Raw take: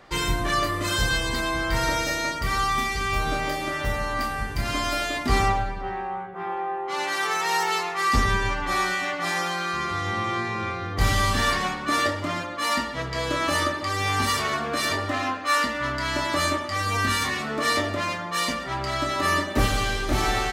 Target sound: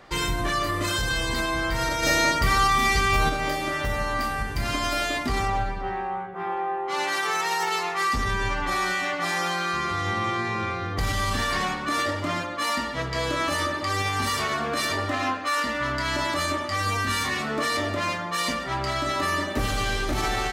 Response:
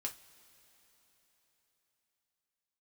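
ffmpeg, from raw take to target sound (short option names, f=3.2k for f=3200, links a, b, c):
-filter_complex "[0:a]alimiter=limit=-17.5dB:level=0:latency=1:release=52,asplit=3[a][b][c];[a]afade=t=out:st=2.02:d=0.02[d];[b]acontrast=33,afade=t=in:st=2.02:d=0.02,afade=t=out:st=3.28:d=0.02[e];[c]afade=t=in:st=3.28:d=0.02[f];[d][e][f]amix=inputs=3:normalize=0,volume=1dB"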